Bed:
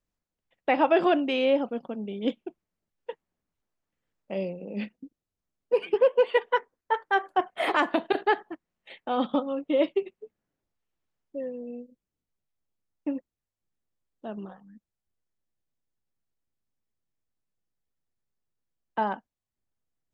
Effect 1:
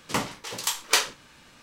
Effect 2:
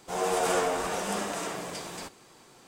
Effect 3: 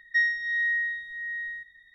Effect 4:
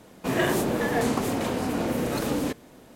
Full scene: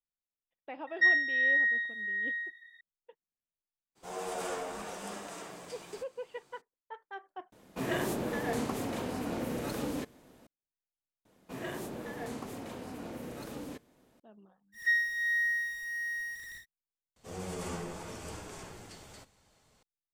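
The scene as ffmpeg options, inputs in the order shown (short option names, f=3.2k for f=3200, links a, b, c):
-filter_complex "[3:a]asplit=2[a][b];[2:a]asplit=2[c][d];[4:a]asplit=2[e][f];[0:a]volume=-20dB[g];[a]highpass=710[h];[b]aeval=exprs='val(0)+0.5*0.0141*sgn(val(0))':c=same[i];[d]afreqshift=-280[j];[g]asplit=4[k][l][m][n];[k]atrim=end=7.524[o];[e]atrim=end=2.95,asetpts=PTS-STARTPTS,volume=-8.5dB[p];[l]atrim=start=10.466:end=11.254[q];[f]atrim=end=2.95,asetpts=PTS-STARTPTS,volume=-15.5dB[r];[m]atrim=start=14.196:end=17.164[s];[j]atrim=end=2.67,asetpts=PTS-STARTPTS,volume=-12dB[t];[n]atrim=start=19.826[u];[h]atrim=end=1.94,asetpts=PTS-STARTPTS,afade=t=in:d=0.004:c=hsin,afade=t=out:st=1.936:d=0.004:c=hsin,adelay=870[v];[c]atrim=end=2.67,asetpts=PTS-STARTPTS,volume=-10.5dB,afade=t=in:d=0.02,afade=t=out:st=2.65:d=0.02,adelay=3950[w];[i]atrim=end=1.94,asetpts=PTS-STARTPTS,volume=-4.5dB,afade=t=in:d=0.1,afade=t=out:st=1.84:d=0.1,adelay=14720[x];[o][p]acrossfade=d=0.004:c1=hsin:c2=hsin[y];[y][q]acrossfade=d=0.004:c1=hsin:c2=hsin[z];[z][r]acrossfade=d=0.004:c1=hsin:c2=hsin[aa];[aa][s]acrossfade=d=0.004:c1=hsin:c2=hsin[ab];[ab][t]acrossfade=d=0.004:c1=hsin:c2=hsin[ac];[ac][u]acrossfade=d=0.004:c1=hsin:c2=hsin[ad];[ad][v][w][x]amix=inputs=4:normalize=0"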